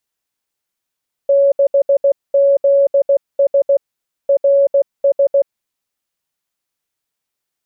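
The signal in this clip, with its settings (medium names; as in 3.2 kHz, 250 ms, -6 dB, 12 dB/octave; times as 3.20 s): Morse "6ZS RS" 16 wpm 558 Hz -8 dBFS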